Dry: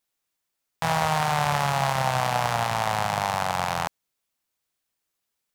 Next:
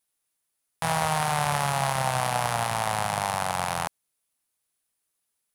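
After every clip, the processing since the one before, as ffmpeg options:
-af "equalizer=f=10k:w=2.5:g=12,volume=-2dB"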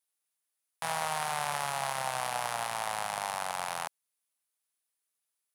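-af "highpass=f=550:p=1,volume=-5.5dB"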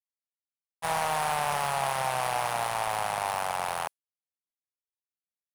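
-af "agate=range=-33dB:threshold=-33dB:ratio=3:detection=peak,volume=28dB,asoftclip=hard,volume=-28dB,volume=7dB"

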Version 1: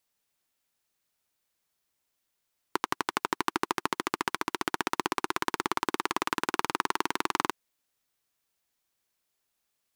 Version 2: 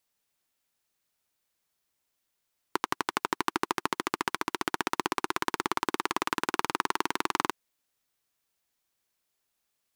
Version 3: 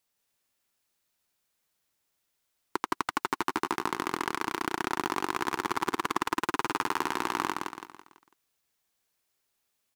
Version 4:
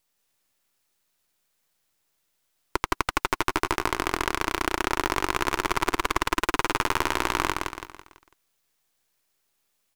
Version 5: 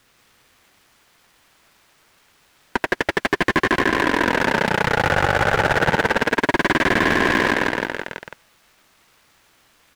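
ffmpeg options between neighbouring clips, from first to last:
-af anull
-filter_complex "[0:a]asoftclip=type=tanh:threshold=-11.5dB,asplit=2[a][b];[b]aecho=0:1:166|332|498|664|830:0.631|0.259|0.106|0.0435|0.0178[c];[a][c]amix=inputs=2:normalize=0"
-af "aeval=exprs='if(lt(val(0),0),0.251*val(0),val(0))':c=same,volume=7.5dB"
-filter_complex "[0:a]asplit=2[a][b];[b]highpass=f=720:p=1,volume=37dB,asoftclip=type=tanh:threshold=-2dB[c];[a][c]amix=inputs=2:normalize=0,lowpass=f=1.4k:p=1,volume=-6dB,aeval=exprs='val(0)*sin(2*PI*580*n/s+580*0.2/0.28*sin(2*PI*0.28*n/s))':c=same"

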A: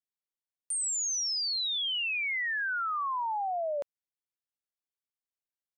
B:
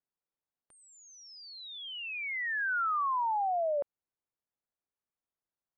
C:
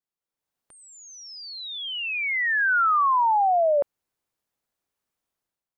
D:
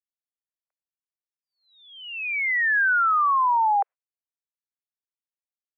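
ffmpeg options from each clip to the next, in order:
-af "lowpass=1.3k,alimiter=level_in=8dB:limit=-24dB:level=0:latency=1,volume=-8dB,volume=5dB"
-af "dynaudnorm=f=170:g=5:m=11dB,volume=-1dB"
-af "agate=range=-32dB:threshold=-36dB:ratio=16:detection=peak,highpass=f=260:t=q:w=0.5412,highpass=f=260:t=q:w=1.307,lowpass=f=2.3k:t=q:w=0.5176,lowpass=f=2.3k:t=q:w=0.7071,lowpass=f=2.3k:t=q:w=1.932,afreqshift=230"

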